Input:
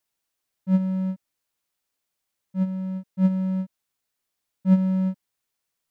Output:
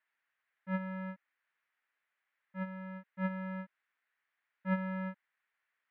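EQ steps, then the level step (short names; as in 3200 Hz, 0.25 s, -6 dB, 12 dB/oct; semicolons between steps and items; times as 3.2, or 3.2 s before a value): band-pass 1800 Hz, Q 2.8; air absorption 360 m; +13.0 dB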